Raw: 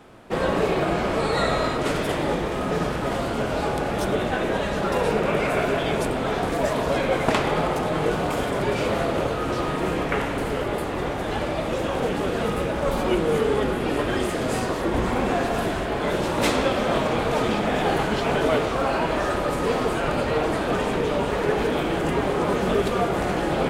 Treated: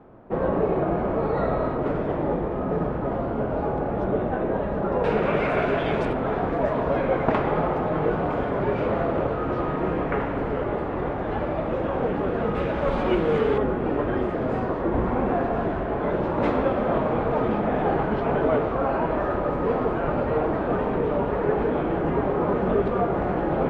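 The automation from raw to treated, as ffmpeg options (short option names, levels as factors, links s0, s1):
-af "asetnsamples=n=441:p=0,asendcmd='5.04 lowpass f 2500;6.13 lowpass f 1500;12.55 lowpass f 2600;13.58 lowpass f 1300',lowpass=1000"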